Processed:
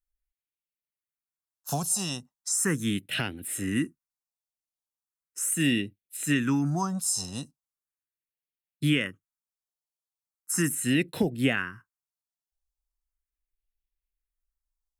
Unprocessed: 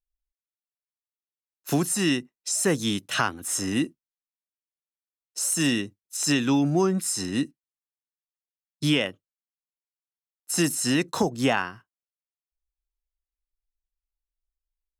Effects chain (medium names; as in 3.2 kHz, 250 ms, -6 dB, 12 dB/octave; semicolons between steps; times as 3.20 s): phase shifter stages 4, 0.38 Hz, lowest notch 310–1100 Hz